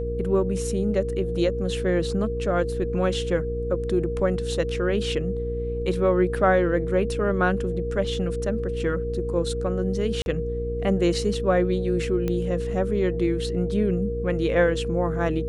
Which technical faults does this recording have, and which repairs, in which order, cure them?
hum 60 Hz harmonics 8 -30 dBFS
tone 470 Hz -28 dBFS
10.22–10.26 gap 41 ms
12.28 pop -15 dBFS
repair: de-click; de-hum 60 Hz, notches 8; notch 470 Hz, Q 30; interpolate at 10.22, 41 ms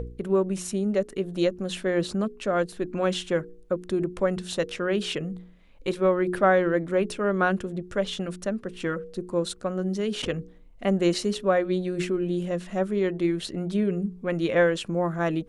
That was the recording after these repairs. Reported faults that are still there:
none

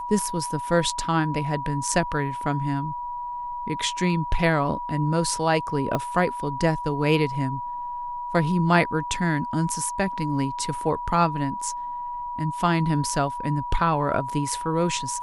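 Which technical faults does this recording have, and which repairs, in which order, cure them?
tone 970 Hz -29 dBFS
5.95 pop -12 dBFS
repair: de-click; notch 970 Hz, Q 30

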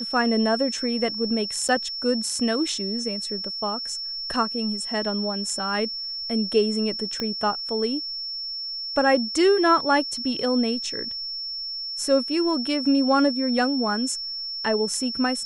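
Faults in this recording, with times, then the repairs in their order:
tone 5400 Hz -29 dBFS
1.68–1.69 gap 8 ms
7.2 pop -14 dBFS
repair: de-click; notch 5400 Hz, Q 30; interpolate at 1.68, 8 ms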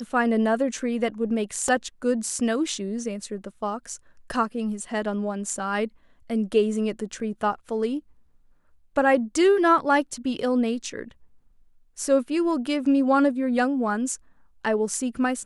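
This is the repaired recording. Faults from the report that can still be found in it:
7.2 pop

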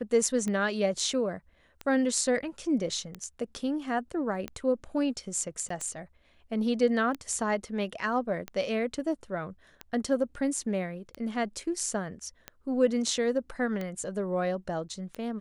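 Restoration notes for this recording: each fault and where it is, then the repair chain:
tick 45 rpm -21 dBFS
5.69–5.7 gap 14 ms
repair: de-click; interpolate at 5.69, 14 ms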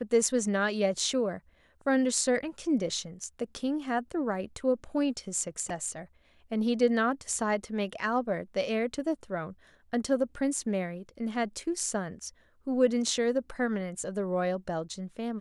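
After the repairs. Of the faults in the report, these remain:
none

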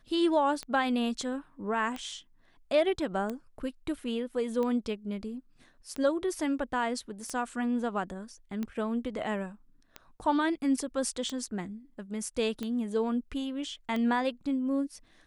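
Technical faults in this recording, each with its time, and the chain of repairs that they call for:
tick 45 rpm -22 dBFS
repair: de-click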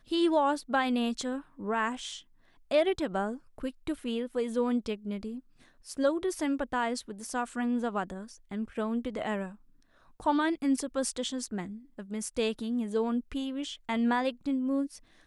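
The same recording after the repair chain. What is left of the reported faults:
none

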